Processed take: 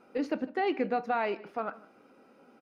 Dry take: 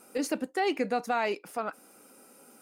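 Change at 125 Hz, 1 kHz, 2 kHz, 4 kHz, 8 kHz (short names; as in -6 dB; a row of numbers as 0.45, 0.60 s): n/a, -1.0 dB, -2.5 dB, -6.5 dB, under -20 dB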